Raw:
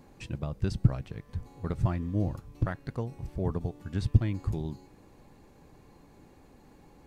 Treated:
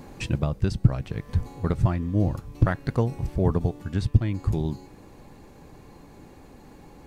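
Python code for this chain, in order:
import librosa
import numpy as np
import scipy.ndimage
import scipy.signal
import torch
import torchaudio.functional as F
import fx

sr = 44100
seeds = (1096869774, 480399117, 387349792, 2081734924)

y = fx.rider(x, sr, range_db=5, speed_s=0.5)
y = F.gain(torch.from_numpy(y), 6.5).numpy()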